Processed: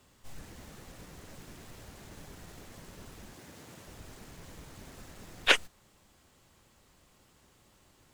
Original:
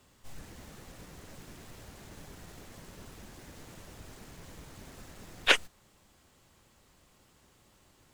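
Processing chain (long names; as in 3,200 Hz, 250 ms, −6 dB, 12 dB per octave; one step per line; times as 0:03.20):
0:03.33–0:03.87: high-pass filter 100 Hz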